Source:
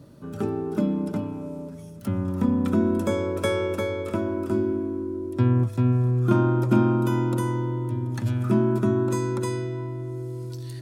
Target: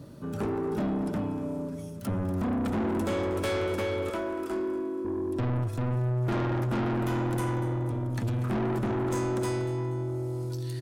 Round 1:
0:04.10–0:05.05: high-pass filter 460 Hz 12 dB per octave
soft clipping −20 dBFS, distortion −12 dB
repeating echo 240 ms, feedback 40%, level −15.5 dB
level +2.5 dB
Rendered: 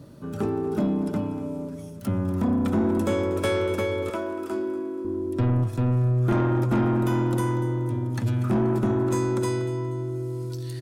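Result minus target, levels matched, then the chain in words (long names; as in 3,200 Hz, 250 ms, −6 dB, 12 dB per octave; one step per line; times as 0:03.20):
soft clipping: distortion −6 dB
0:04.10–0:05.05: high-pass filter 460 Hz 12 dB per octave
soft clipping −28.5 dBFS, distortion −6 dB
repeating echo 240 ms, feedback 40%, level −15.5 dB
level +2.5 dB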